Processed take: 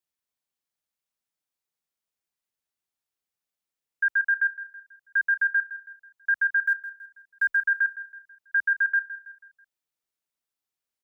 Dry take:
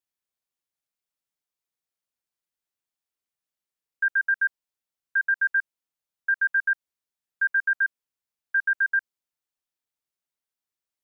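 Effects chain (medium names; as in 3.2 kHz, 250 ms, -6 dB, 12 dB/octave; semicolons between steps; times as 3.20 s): 6.66–7.57 s: block-companded coder 7-bit; frequency shift +13 Hz; feedback delay 163 ms, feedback 44%, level -14 dB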